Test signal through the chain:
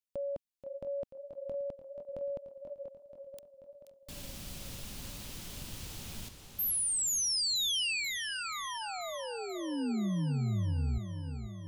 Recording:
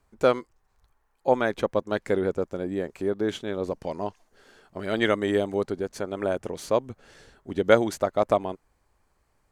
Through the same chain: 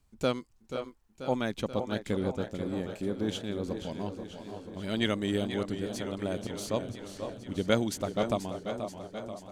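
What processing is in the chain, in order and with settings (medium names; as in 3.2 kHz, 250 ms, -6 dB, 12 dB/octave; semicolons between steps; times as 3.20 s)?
high-order bell 840 Hz -9.5 dB 2.9 oct; on a send: band-passed feedback delay 509 ms, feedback 43%, band-pass 720 Hz, level -8 dB; on the sum: modulated delay 484 ms, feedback 66%, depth 79 cents, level -10 dB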